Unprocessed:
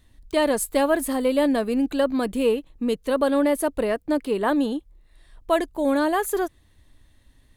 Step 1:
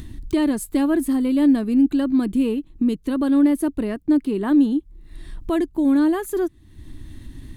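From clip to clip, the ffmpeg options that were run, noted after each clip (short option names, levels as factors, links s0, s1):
-af "equalizer=f=130:w=0.9:g=3.5,acompressor=mode=upward:threshold=0.0794:ratio=2.5,lowshelf=f=410:t=q:w=3:g=6.5,volume=0.562"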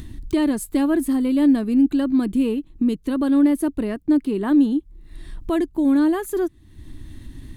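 -af anull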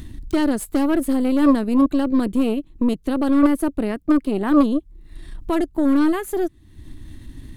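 -af "aeval=exprs='0.355*(cos(1*acos(clip(val(0)/0.355,-1,1)))-cos(1*PI/2))+0.178*(cos(2*acos(clip(val(0)/0.355,-1,1)))-cos(2*PI/2))+0.112*(cos(4*acos(clip(val(0)/0.355,-1,1)))-cos(4*PI/2))':c=same"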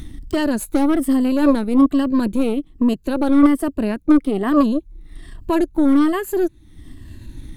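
-af "afftfilt=real='re*pow(10,8/40*sin(2*PI*(1.4*log(max(b,1)*sr/1024/100)/log(2)-(-1.2)*(pts-256)/sr)))':imag='im*pow(10,8/40*sin(2*PI*(1.4*log(max(b,1)*sr/1024/100)/log(2)-(-1.2)*(pts-256)/sr)))':win_size=1024:overlap=0.75,volume=1.12"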